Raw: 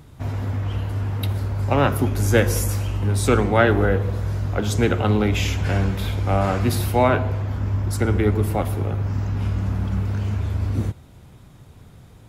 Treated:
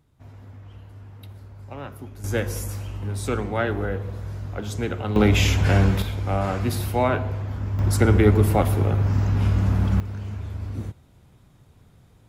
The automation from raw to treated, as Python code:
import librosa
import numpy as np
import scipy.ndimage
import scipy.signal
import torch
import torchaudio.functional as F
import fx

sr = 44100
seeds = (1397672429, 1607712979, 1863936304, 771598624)

y = fx.gain(x, sr, db=fx.steps((0.0, -18.0), (2.24, -8.0), (5.16, 3.0), (6.02, -4.0), (7.79, 3.0), (10.0, -8.0)))